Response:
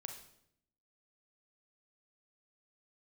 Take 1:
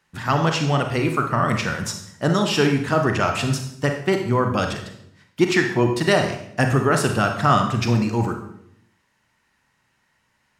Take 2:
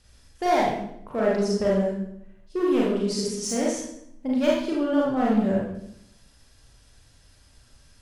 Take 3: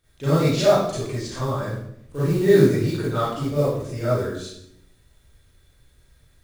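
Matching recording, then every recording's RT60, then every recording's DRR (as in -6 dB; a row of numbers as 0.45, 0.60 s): 1; 0.70, 0.75, 0.70 s; 4.0, -5.0, -12.0 dB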